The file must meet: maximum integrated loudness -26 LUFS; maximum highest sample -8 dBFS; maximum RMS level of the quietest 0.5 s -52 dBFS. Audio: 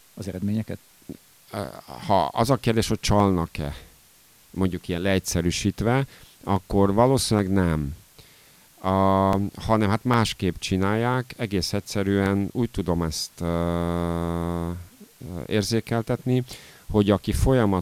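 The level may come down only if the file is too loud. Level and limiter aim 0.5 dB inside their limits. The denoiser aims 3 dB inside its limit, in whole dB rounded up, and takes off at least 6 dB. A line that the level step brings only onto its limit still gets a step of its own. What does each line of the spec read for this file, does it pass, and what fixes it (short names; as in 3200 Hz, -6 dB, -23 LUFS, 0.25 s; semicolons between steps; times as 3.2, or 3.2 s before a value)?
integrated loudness -24.0 LUFS: fail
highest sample -5.5 dBFS: fail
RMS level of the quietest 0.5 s -55 dBFS: OK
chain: gain -2.5 dB; limiter -8.5 dBFS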